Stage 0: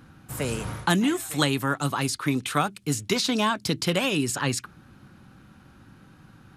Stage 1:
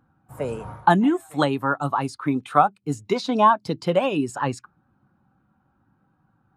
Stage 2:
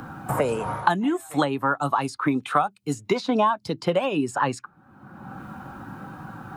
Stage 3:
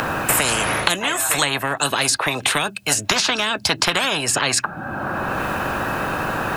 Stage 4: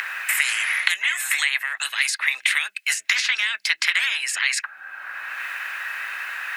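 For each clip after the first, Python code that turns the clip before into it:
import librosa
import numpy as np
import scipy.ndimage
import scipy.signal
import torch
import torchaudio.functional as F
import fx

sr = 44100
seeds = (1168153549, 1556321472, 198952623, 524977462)

y1 = fx.peak_eq(x, sr, hz=800.0, db=10.5, octaves=1.7)
y1 = fx.spectral_expand(y1, sr, expansion=1.5)
y2 = fx.low_shelf(y1, sr, hz=410.0, db=-4.5)
y2 = fx.band_squash(y2, sr, depth_pct=100)
y3 = fx.small_body(y2, sr, hz=(640.0, 1600.0, 2600.0), ring_ms=25, db=12)
y3 = fx.spectral_comp(y3, sr, ratio=10.0)
y3 = y3 * librosa.db_to_amplitude(-1.5)
y4 = fx.highpass_res(y3, sr, hz=2000.0, q=5.3)
y4 = y4 * librosa.db_to_amplitude(-7.5)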